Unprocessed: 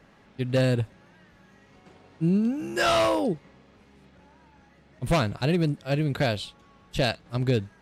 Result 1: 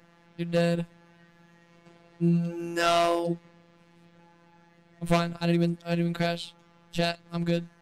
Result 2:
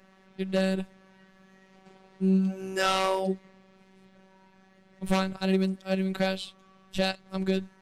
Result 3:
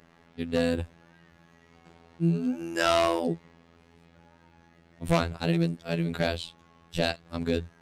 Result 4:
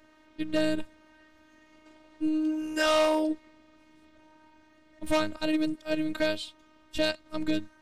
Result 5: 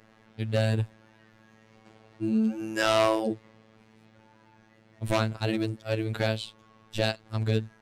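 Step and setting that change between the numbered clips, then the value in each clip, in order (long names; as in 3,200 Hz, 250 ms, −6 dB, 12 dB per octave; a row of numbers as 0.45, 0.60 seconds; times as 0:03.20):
phases set to zero, frequency: 170, 190, 84, 310, 110 Hertz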